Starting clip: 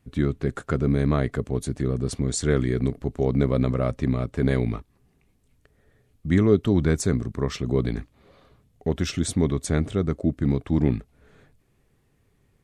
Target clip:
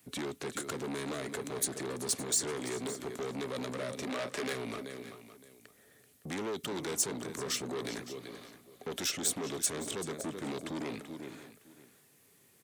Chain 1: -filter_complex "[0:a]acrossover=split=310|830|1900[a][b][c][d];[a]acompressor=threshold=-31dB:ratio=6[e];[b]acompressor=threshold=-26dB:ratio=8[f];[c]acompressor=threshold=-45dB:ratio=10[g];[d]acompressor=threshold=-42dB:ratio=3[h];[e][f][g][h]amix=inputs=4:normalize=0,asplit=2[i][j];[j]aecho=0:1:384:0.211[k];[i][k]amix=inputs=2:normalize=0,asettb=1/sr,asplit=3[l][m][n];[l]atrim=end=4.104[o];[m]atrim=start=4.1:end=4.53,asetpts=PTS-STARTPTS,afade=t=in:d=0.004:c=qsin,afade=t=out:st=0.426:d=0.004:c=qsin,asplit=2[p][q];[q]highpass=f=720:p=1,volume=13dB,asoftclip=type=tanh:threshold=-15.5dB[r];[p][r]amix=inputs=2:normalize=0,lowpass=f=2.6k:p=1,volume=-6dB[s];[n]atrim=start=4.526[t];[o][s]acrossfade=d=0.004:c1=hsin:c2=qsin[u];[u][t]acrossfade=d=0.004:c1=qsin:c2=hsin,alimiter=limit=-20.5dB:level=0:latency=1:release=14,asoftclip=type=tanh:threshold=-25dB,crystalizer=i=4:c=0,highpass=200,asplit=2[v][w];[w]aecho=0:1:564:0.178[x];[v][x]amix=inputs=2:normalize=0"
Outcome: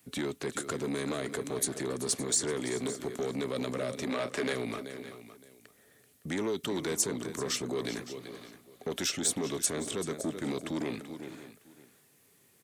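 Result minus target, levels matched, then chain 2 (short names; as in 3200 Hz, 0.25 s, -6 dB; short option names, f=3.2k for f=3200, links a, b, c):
soft clip: distortion -8 dB
-filter_complex "[0:a]acrossover=split=310|830|1900[a][b][c][d];[a]acompressor=threshold=-31dB:ratio=6[e];[b]acompressor=threshold=-26dB:ratio=8[f];[c]acompressor=threshold=-45dB:ratio=10[g];[d]acompressor=threshold=-42dB:ratio=3[h];[e][f][g][h]amix=inputs=4:normalize=0,asplit=2[i][j];[j]aecho=0:1:384:0.211[k];[i][k]amix=inputs=2:normalize=0,asettb=1/sr,asplit=3[l][m][n];[l]atrim=end=4.104[o];[m]atrim=start=4.1:end=4.53,asetpts=PTS-STARTPTS,afade=t=in:d=0.004:c=qsin,afade=t=out:st=0.426:d=0.004:c=qsin,asplit=2[p][q];[q]highpass=f=720:p=1,volume=13dB,asoftclip=type=tanh:threshold=-15.5dB[r];[p][r]amix=inputs=2:normalize=0,lowpass=f=2.6k:p=1,volume=-6dB[s];[n]atrim=start=4.526[t];[o][s]acrossfade=d=0.004:c1=hsin:c2=qsin[u];[u][t]acrossfade=d=0.004:c1=qsin:c2=hsin,alimiter=limit=-20.5dB:level=0:latency=1:release=14,asoftclip=type=tanh:threshold=-33dB,crystalizer=i=4:c=0,highpass=200,asplit=2[v][w];[w]aecho=0:1:564:0.178[x];[v][x]amix=inputs=2:normalize=0"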